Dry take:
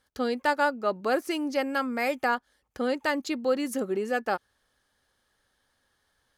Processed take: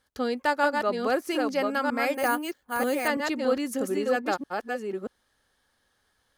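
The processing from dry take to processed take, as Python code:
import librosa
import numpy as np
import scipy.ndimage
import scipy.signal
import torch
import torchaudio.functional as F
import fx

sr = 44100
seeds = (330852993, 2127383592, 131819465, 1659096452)

y = fx.reverse_delay(x, sr, ms=634, wet_db=-3.5)
y = fx.resample_bad(y, sr, factor=4, down='filtered', up='hold', at=(2.14, 3.08))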